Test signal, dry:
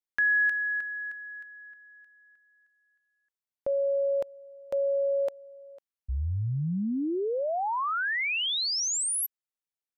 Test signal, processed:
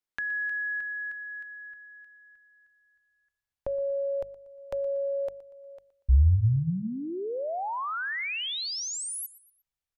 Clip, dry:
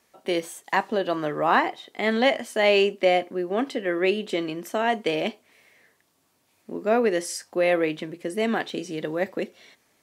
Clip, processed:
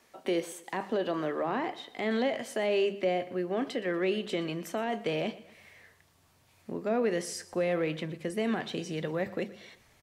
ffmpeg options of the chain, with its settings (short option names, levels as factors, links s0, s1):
-filter_complex "[0:a]asubboost=boost=9:cutoff=92,acrossover=split=470[s0][s1];[s1]acompressor=threshold=0.0398:ratio=10:attack=0.31:release=42:knee=2.83:detection=peak[s2];[s0][s2]amix=inputs=2:normalize=0,highshelf=f=6500:g=-5.5,bandreject=f=50:t=h:w=6,bandreject=f=100:t=h:w=6,bandreject=f=150:t=h:w=6,bandreject=f=200:t=h:w=6,asplit=2[s3][s4];[s4]acompressor=threshold=0.00794:ratio=6:attack=13:release=707:knee=1:detection=peak,volume=1.06[s5];[s3][s5]amix=inputs=2:normalize=0,aecho=1:1:119|238|357:0.126|0.0491|0.0191,volume=0.708"